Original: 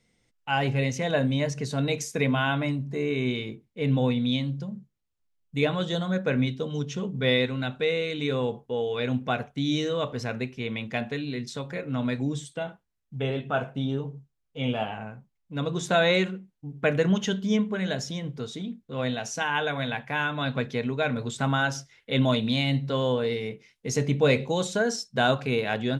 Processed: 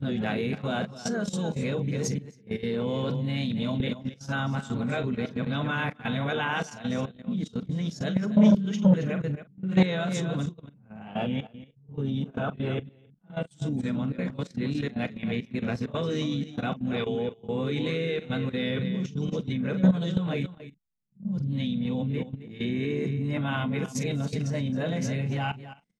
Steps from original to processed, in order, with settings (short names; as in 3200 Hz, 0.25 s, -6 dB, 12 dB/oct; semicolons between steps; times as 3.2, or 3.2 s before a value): whole clip reversed; on a send: echo 0.269 s -11.5 dB; on the sum: harmoniser -5 st -17 dB, -3 st -13 dB; bell 190 Hz +11.5 dB 0.86 oct; doubler 43 ms -12.5 dB; gate -28 dBFS, range -9 dB; level quantiser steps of 14 dB; core saturation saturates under 310 Hz